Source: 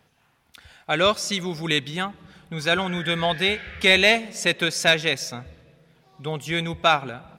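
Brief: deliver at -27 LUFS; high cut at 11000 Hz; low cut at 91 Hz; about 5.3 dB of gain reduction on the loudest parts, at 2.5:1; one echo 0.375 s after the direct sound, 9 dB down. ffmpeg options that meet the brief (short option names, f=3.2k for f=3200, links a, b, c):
-af "highpass=91,lowpass=11k,acompressor=threshold=-20dB:ratio=2.5,aecho=1:1:375:0.355,volume=-2dB"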